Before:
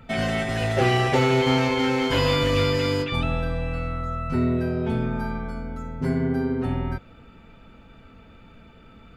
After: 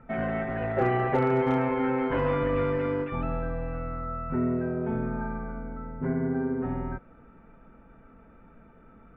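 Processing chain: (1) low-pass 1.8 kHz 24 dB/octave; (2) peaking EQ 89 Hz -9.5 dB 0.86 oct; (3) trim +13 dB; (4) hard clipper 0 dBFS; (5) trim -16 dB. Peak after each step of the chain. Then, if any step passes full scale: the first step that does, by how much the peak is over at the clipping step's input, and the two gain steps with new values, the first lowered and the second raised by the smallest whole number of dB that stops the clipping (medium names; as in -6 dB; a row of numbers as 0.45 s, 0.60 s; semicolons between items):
-8.5 dBFS, -9.0 dBFS, +4.0 dBFS, 0.0 dBFS, -16.0 dBFS; step 3, 4.0 dB; step 3 +9 dB, step 5 -12 dB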